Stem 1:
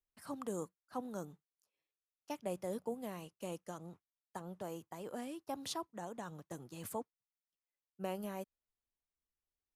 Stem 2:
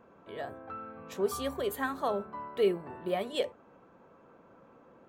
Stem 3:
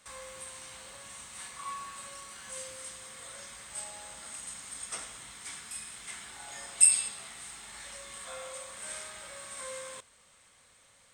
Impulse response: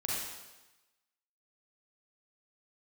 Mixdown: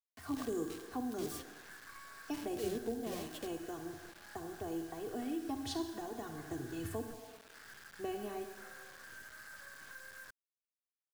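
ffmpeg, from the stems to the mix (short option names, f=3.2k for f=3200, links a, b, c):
-filter_complex "[0:a]lowpass=f=1.9k:p=1,equalizer=f=80:w=2.1:g=10,aecho=1:1:2.7:0.98,volume=3dB,asplit=3[a][b][c];[b]volume=-7dB[d];[1:a]acrusher=bits=5:mix=0:aa=0.000001,volume=-8dB[e];[2:a]acompressor=threshold=-42dB:ratio=8,aeval=exprs='0.0596*(cos(1*acos(clip(val(0)/0.0596,-1,1)))-cos(1*PI/2))+0.0266*(cos(6*acos(clip(val(0)/0.0596,-1,1)))-cos(6*PI/2))':c=same,lowpass=f=1.6k:t=q:w=14,adelay=300,volume=-14.5dB[f];[c]apad=whole_len=224245[g];[e][g]sidechaingate=range=-33dB:threshold=-57dB:ratio=16:detection=peak[h];[3:a]atrim=start_sample=2205[i];[d][i]afir=irnorm=-1:irlink=0[j];[a][h][f][j]amix=inputs=4:normalize=0,acrusher=bits=8:mix=0:aa=0.000001,acrossover=split=320|3000[k][l][m];[l]acompressor=threshold=-52dB:ratio=2[n];[k][n][m]amix=inputs=3:normalize=0"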